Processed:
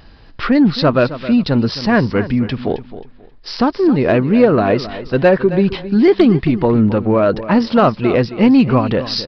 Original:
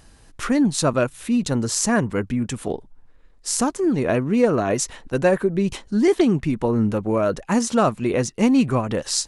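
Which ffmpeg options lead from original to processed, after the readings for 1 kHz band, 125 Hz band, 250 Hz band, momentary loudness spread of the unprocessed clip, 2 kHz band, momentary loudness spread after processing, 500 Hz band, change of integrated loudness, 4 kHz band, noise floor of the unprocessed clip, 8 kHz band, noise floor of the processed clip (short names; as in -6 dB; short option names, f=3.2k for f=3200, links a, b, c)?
+6.5 dB, +7.0 dB, +7.0 dB, 7 LU, +6.5 dB, 7 LU, +7.0 dB, +6.5 dB, +5.5 dB, -51 dBFS, under -20 dB, -42 dBFS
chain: -af "aresample=11025,aresample=44100,acontrast=63,aecho=1:1:267|534|801:0.2|0.0479|0.0115,volume=1dB"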